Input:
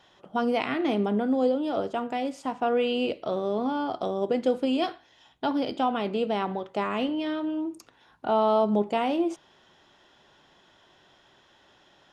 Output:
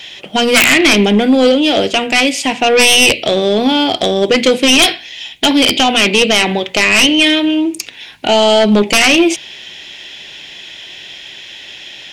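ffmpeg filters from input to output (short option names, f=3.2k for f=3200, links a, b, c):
-af "highshelf=f=1.7k:t=q:w=3:g=11,aeval=exprs='0.891*sin(PI/2*6.31*val(0)/0.891)':c=same,bandreject=f=60:t=h:w=6,bandreject=f=120:t=h:w=6,bandreject=f=180:t=h:w=6,bandreject=f=240:t=h:w=6,volume=-3dB"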